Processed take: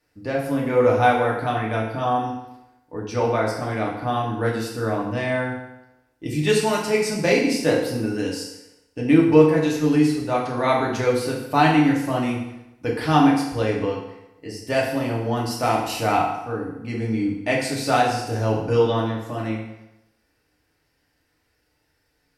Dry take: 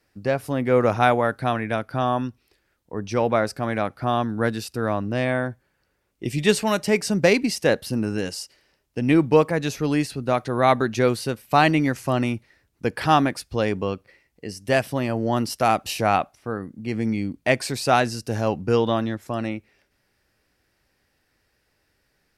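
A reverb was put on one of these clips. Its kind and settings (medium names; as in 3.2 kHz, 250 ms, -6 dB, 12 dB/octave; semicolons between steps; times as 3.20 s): FDN reverb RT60 0.92 s, low-frequency decay 0.9×, high-frequency decay 0.85×, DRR -4 dB; trim -5.5 dB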